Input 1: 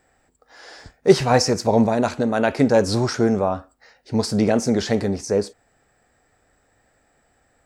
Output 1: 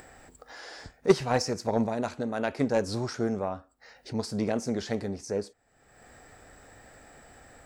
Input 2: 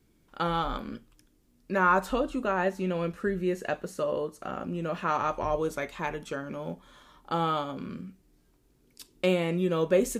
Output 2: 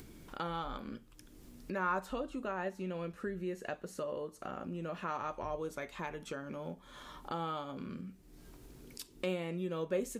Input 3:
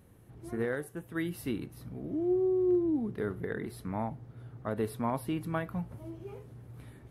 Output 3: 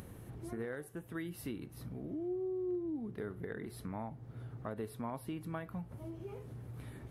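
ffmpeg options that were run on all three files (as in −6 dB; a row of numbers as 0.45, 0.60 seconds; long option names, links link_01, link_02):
-af "acompressor=mode=upward:threshold=-23dB:ratio=2.5,aeval=exprs='0.891*(cos(1*acos(clip(val(0)/0.891,-1,1)))-cos(1*PI/2))+0.141*(cos(3*acos(clip(val(0)/0.891,-1,1)))-cos(3*PI/2))':channel_layout=same,volume=-5.5dB"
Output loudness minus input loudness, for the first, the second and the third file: −9.5, −10.5, −9.0 LU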